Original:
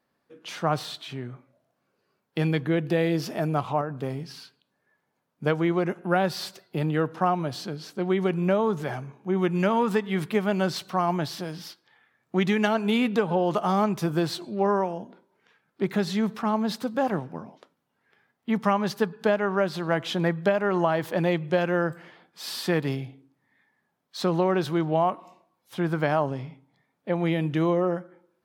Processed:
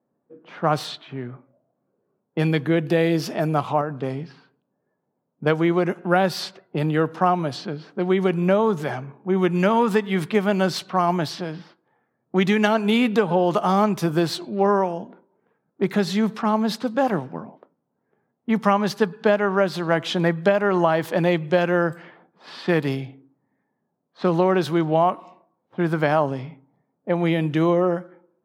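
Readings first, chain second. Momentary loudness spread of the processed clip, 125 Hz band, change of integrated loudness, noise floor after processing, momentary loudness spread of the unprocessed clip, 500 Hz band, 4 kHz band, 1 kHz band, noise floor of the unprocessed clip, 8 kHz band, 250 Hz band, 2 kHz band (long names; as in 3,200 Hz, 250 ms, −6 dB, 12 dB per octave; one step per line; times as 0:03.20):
13 LU, +3.5 dB, +4.5 dB, −76 dBFS, 13 LU, +4.5 dB, +3.5 dB, +4.5 dB, −76 dBFS, +2.5 dB, +4.0 dB, +4.5 dB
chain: low-pass that shuts in the quiet parts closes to 610 Hz, open at −23.5 dBFS
high-pass filter 120 Hz
level +4.5 dB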